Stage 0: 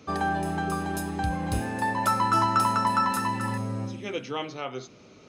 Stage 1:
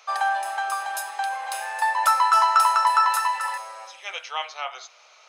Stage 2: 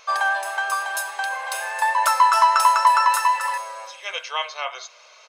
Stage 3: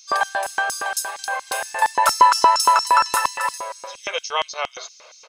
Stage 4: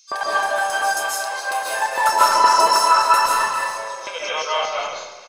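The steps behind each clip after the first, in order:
steep high-pass 690 Hz 36 dB/octave; trim +5.5 dB
comb 1.9 ms, depth 50%; vibrato 6.4 Hz 13 cents; trim +3 dB
LFO high-pass square 4.3 Hz 430–5600 Hz; trim +2 dB
doubling 32 ms -12 dB; algorithmic reverb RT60 1.2 s, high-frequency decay 0.7×, pre-delay 105 ms, DRR -7 dB; trim -5.5 dB

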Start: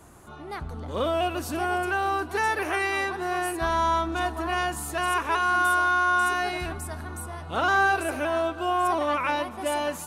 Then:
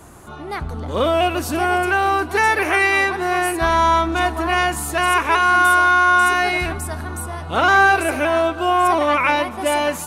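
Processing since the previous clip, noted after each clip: dynamic bell 2.2 kHz, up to +7 dB, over -47 dBFS, Q 4.4; trim +8 dB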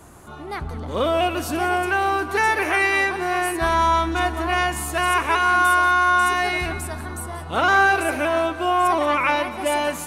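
two-band feedback delay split 1.4 kHz, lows 137 ms, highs 182 ms, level -15 dB; trim -3 dB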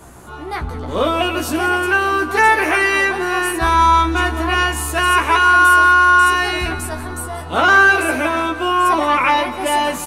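doubling 16 ms -3.5 dB; trim +3.5 dB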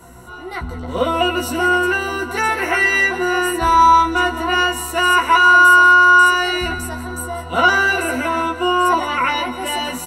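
rippled EQ curve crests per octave 2, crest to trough 13 dB; trim -3.5 dB

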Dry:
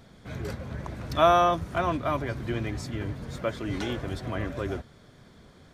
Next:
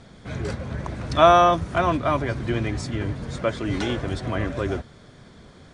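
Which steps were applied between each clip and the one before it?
steep low-pass 10 kHz 72 dB/octave; trim +5.5 dB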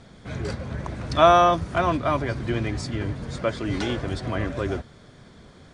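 dynamic bell 4.7 kHz, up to +5 dB, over -56 dBFS, Q 6.8; trim -1 dB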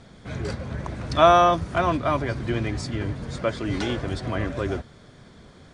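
no audible change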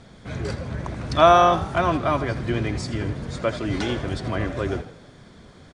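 frequency-shifting echo 81 ms, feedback 48%, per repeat +43 Hz, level -14 dB; trim +1 dB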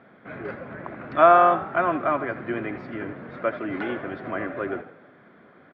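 cabinet simulation 280–2200 Hz, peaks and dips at 460 Hz -3 dB, 930 Hz -4 dB, 1.4 kHz +3 dB

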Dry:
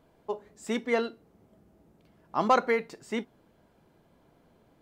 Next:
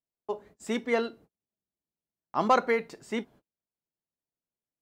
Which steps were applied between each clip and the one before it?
gate -52 dBFS, range -38 dB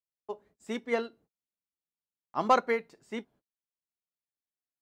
upward expansion 1.5:1, over -41 dBFS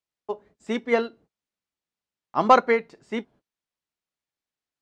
distance through air 70 m; trim +8 dB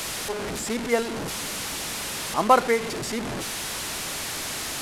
one-bit delta coder 64 kbps, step -23 dBFS; trim -1.5 dB

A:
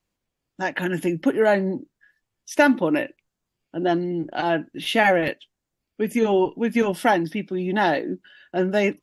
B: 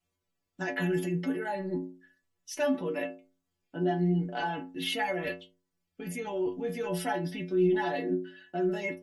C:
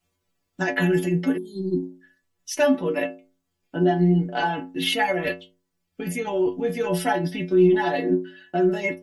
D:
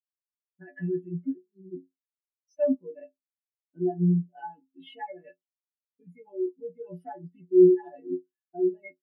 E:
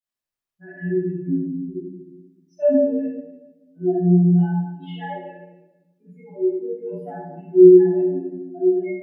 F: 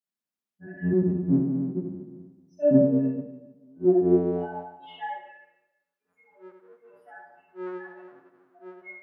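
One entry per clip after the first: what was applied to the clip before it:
in parallel at +3 dB: compressor with a negative ratio -26 dBFS, ratio -0.5; on the sum: inharmonic resonator 86 Hz, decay 0.47 s, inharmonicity 0.008; trim -3.5 dB
spectral replace 1.40–1.89 s, 430–3100 Hz after; transient shaper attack +2 dB, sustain -3 dB; trim +8 dB
spectral contrast expander 2.5:1
reverberation RT60 1.1 s, pre-delay 6 ms, DRR -11 dB; trim -6 dB
octave divider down 1 oct, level 0 dB; high-pass sweep 200 Hz -> 1.4 kHz, 3.57–5.42 s; trim -5 dB

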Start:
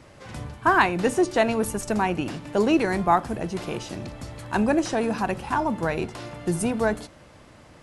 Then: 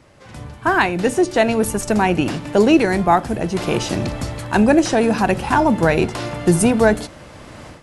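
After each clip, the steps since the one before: dynamic bell 1.1 kHz, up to -5 dB, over -37 dBFS, Q 2.5; level rider gain up to 15.5 dB; trim -1 dB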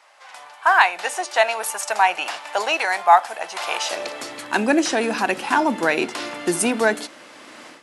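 treble shelf 4.5 kHz -5.5 dB; high-pass sweep 770 Hz -> 270 Hz, 3.77–4.39 s; tilt shelf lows -9.5 dB, about 740 Hz; trim -5 dB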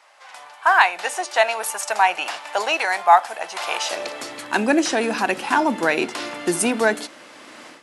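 no audible change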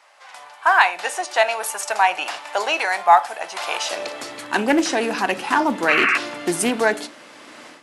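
painted sound noise, 5.88–6.18 s, 1.1–2.8 kHz -18 dBFS; reverberation RT60 0.35 s, pre-delay 7 ms, DRR 15.5 dB; loudspeaker Doppler distortion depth 0.16 ms

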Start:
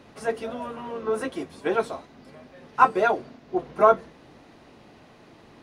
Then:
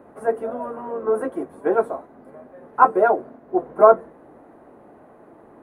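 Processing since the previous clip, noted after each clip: FFT filter 130 Hz 0 dB, 320 Hz +9 dB, 630 Hz +11 dB, 1.6 kHz +4 dB, 2.8 kHz -13 dB, 5.2 kHz -21 dB, 10 kHz +2 dB; trim -4.5 dB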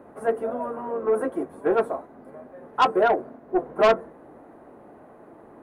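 saturation -12.5 dBFS, distortion -9 dB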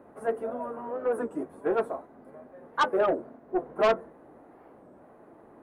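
warped record 33 1/3 rpm, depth 250 cents; trim -5 dB

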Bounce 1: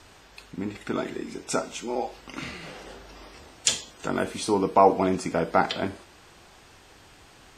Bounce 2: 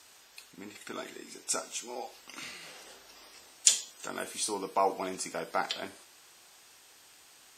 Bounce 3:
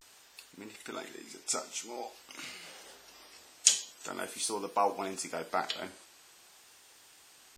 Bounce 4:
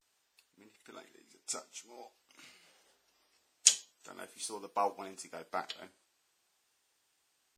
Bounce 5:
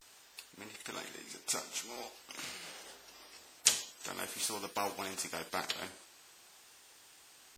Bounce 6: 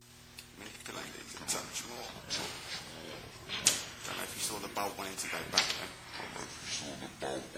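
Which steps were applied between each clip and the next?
RIAA curve recording; trim -9 dB
vibrato 0.47 Hz 66 cents; trim -1 dB
upward expansion 1.5:1, over -55 dBFS
spectrum-flattening compressor 2:1; trim -3 dB
mains buzz 120 Hz, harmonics 3, -62 dBFS -4 dB/octave; ever faster or slower copies 80 ms, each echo -7 st, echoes 3

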